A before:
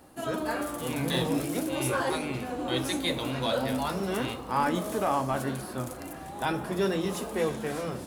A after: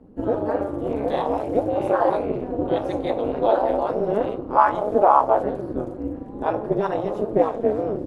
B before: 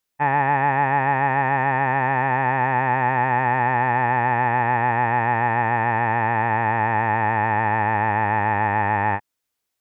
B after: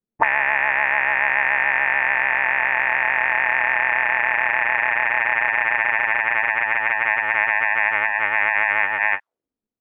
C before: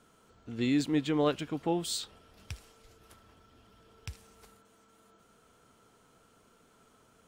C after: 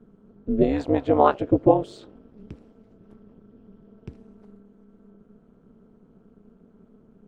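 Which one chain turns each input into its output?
auto-wah 200–2200 Hz, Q 4, up, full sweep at -18 dBFS; AM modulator 210 Hz, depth 75%; normalise peaks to -2 dBFS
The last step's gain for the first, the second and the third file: +20.0, +16.5, +24.0 dB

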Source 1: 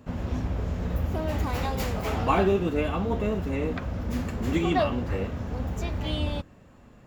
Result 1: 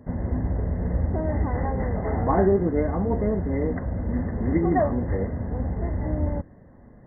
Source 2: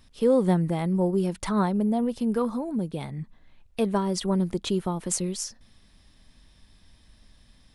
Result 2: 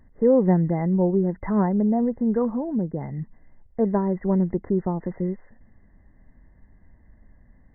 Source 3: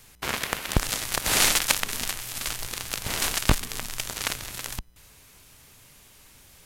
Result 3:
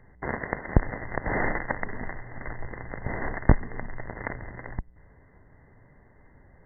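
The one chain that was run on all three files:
brick-wall FIR low-pass 2100 Hz; bell 1300 Hz -11 dB 0.63 oct; gain +3.5 dB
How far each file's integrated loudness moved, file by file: +2.5, +3.0, -5.5 LU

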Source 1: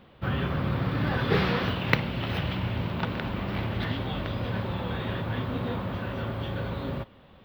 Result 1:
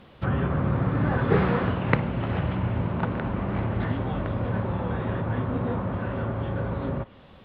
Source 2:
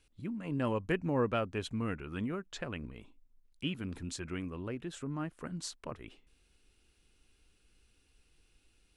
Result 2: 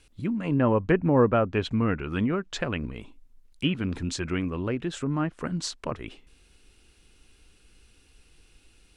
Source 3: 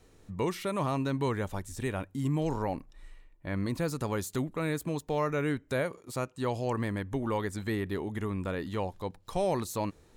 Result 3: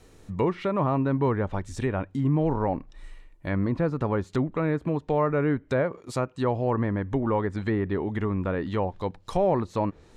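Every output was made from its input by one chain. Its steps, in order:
treble ducked by the level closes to 1500 Hz, closed at -28 dBFS; match loudness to -27 LUFS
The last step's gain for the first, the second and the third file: +3.5, +10.5, +6.0 dB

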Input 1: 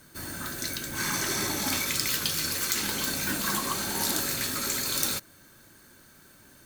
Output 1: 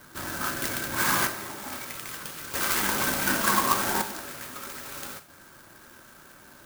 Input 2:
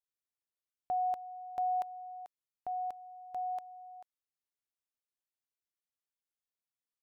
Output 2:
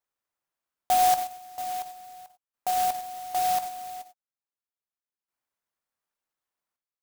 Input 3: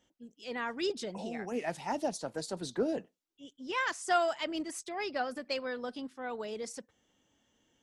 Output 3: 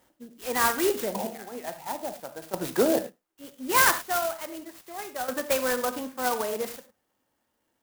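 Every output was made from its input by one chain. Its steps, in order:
bell 1100 Hz +10 dB 2.4 oct; step gate "xxxxxx......x" 71 bpm -12 dB; non-linear reverb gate 0.12 s flat, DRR 8.5 dB; clock jitter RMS 0.073 ms; match loudness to -27 LUFS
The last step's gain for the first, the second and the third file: -0.5, +2.5, +4.0 dB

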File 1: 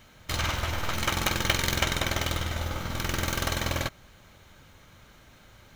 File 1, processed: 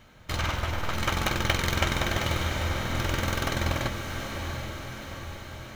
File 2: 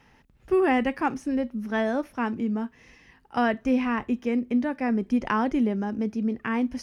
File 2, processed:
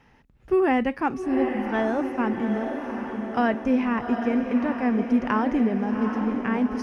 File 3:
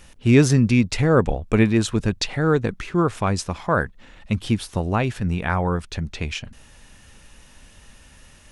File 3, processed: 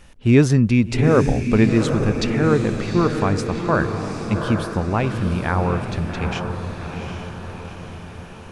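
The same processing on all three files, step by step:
high shelf 3400 Hz -7 dB; on a send: diffused feedback echo 0.779 s, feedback 57%, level -6 dB; on the sum: gain +1 dB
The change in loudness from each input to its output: -0.5, +1.5, +1.5 LU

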